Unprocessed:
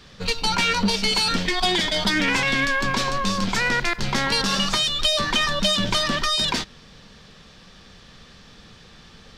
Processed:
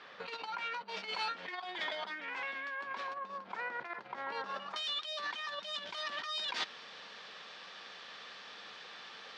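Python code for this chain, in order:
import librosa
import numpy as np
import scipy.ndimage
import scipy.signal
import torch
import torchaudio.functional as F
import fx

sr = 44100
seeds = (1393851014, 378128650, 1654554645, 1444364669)

y = fx.lowpass(x, sr, hz=fx.steps((0.0, 2000.0), (3.14, 1200.0), (4.76, 3800.0)), slope=12)
y = fx.over_compress(y, sr, threshold_db=-32.0, ratio=-1.0)
y = scipy.signal.sosfilt(scipy.signal.butter(2, 660.0, 'highpass', fs=sr, output='sos'), y)
y = F.gain(torch.from_numpy(y), -5.0).numpy()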